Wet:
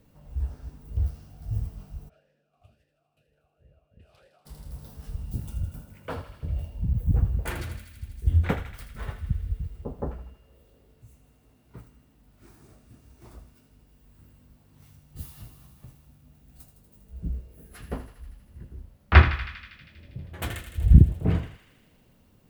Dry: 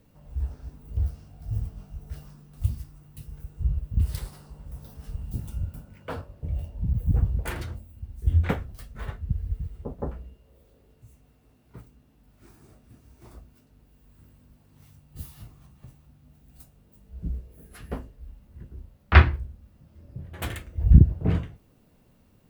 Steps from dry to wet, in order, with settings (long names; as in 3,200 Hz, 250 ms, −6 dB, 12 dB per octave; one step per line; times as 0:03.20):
feedback echo with a high-pass in the loop 80 ms, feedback 80%, high-pass 1,100 Hz, level −9.5 dB
0:02.08–0:04.45: formant filter swept between two vowels a-e 1.5 Hz → 4 Hz